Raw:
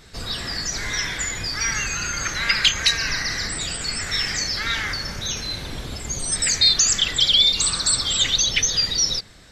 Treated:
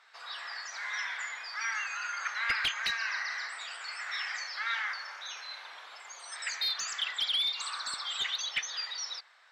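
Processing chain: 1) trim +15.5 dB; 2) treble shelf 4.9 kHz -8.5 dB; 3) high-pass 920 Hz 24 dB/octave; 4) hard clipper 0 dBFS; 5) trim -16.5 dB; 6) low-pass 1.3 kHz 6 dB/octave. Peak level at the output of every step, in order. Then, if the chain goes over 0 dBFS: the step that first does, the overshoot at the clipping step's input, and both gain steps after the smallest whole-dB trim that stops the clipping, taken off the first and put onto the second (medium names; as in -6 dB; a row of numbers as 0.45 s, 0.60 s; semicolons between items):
+11.0 dBFS, +8.5 dBFS, +8.5 dBFS, 0.0 dBFS, -16.5 dBFS, -19.0 dBFS; step 1, 8.5 dB; step 1 +6.5 dB, step 5 -7.5 dB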